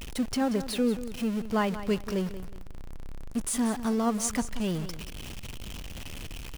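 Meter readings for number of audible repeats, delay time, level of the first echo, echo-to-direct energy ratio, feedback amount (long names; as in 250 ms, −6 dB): 2, 183 ms, −13.0 dB, −12.5 dB, 27%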